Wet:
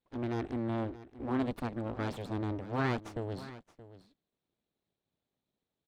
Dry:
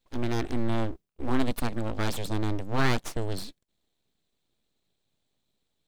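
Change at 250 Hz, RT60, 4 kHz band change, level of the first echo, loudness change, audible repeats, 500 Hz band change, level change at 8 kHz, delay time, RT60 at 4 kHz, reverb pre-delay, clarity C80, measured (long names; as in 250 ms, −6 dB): −4.0 dB, no reverb audible, −12.0 dB, −16.0 dB, −5.0 dB, 1, −4.0 dB, −17.5 dB, 625 ms, no reverb audible, no reverb audible, no reverb audible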